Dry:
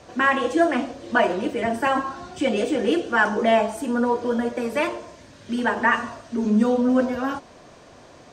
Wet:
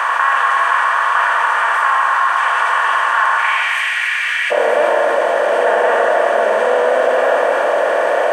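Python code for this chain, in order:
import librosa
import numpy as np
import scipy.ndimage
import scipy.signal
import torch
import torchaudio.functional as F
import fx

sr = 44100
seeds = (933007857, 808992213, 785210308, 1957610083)

y = fx.bin_compress(x, sr, power=0.2)
y = fx.ladder_highpass(y, sr, hz=fx.steps((0.0, 980.0), (3.37, 2000.0), (4.5, 510.0)), resonance_pct=65)
y = y + 10.0 ** (-8.5 / 20.0) * np.pad(y, (int(266 * sr / 1000.0), 0))[:len(y)]
y = fx.rev_plate(y, sr, seeds[0], rt60_s=1.7, hf_ratio=0.8, predelay_ms=0, drr_db=3.5)
y = fx.env_flatten(y, sr, amount_pct=50)
y = y * 10.0 ** (1.5 / 20.0)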